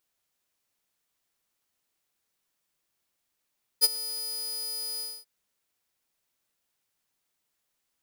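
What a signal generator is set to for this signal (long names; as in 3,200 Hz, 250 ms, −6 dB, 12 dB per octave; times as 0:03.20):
note with an ADSR envelope saw 4,950 Hz, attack 32 ms, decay 30 ms, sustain −17.5 dB, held 1.19 s, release 247 ms −12 dBFS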